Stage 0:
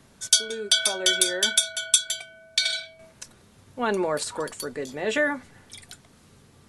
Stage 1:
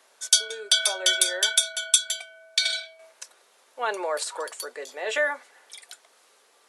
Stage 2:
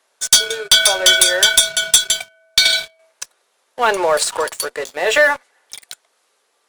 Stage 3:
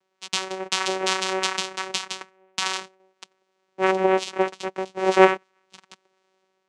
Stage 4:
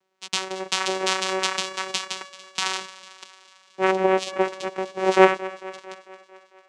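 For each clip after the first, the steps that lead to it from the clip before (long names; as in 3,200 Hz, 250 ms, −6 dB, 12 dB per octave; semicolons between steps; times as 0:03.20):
high-pass filter 490 Hz 24 dB per octave
leveller curve on the samples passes 3; in parallel at −12 dB: asymmetric clip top −25.5 dBFS
automatic gain control gain up to 5.5 dB; flanger 0.35 Hz, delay 0.2 ms, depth 4.3 ms, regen +70%; channel vocoder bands 4, saw 189 Hz; level −4 dB
feedback echo with a high-pass in the loop 224 ms, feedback 63%, high-pass 150 Hz, level −17.5 dB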